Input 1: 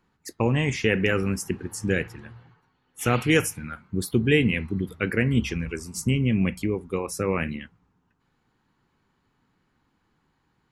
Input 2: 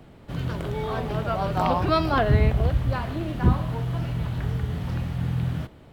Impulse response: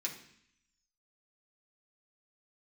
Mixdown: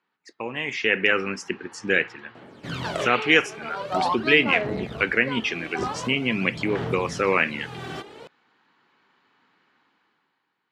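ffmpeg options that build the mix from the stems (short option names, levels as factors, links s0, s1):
-filter_complex "[0:a]lowpass=3200,tiltshelf=f=970:g=-4.5,volume=0.531,asplit=2[s0][s1];[1:a]aphaser=in_gain=1:out_gain=1:delay=2.6:decay=0.66:speed=0.45:type=sinusoidal,aeval=exprs='clip(val(0),-1,0.251)':c=same,adelay=2350,volume=0.708[s2];[s1]apad=whole_len=364770[s3];[s2][s3]sidechaincompress=threshold=0.0126:ratio=16:attack=11:release=859[s4];[s0][s4]amix=inputs=2:normalize=0,highshelf=f=4000:g=5.5,dynaudnorm=f=130:g=13:m=4.73,highpass=280,lowpass=6600"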